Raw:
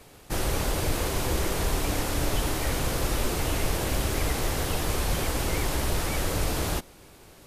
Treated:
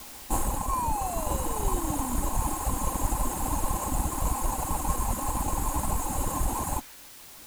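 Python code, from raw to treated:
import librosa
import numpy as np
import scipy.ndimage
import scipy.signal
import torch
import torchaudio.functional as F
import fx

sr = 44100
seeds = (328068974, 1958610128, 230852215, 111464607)

p1 = fx.lower_of_two(x, sr, delay_ms=3.7)
p2 = fx.dereverb_blind(p1, sr, rt60_s=1.1)
p3 = fx.spec_paint(p2, sr, seeds[0], shape='fall', start_s=0.47, length_s=1.7, low_hz=230.0, high_hz=1400.0, level_db=-36.0)
p4 = fx.brickwall_bandstop(p3, sr, low_hz=1100.0, high_hz=6400.0)
p5 = fx.sample_hold(p4, sr, seeds[1], rate_hz=3400.0, jitter_pct=0)
p6 = p4 + (p5 * librosa.db_to_amplitude(-8.0))
p7 = fx.graphic_eq(p6, sr, hz=(500, 1000, 2000, 8000), db=(-10, 9, -4, 5))
p8 = fx.quant_dither(p7, sr, seeds[2], bits=8, dither='triangular')
p9 = fx.dynamic_eq(p8, sr, hz=1600.0, q=0.81, threshold_db=-47.0, ratio=4.0, max_db=4)
y = fx.rider(p9, sr, range_db=10, speed_s=0.5)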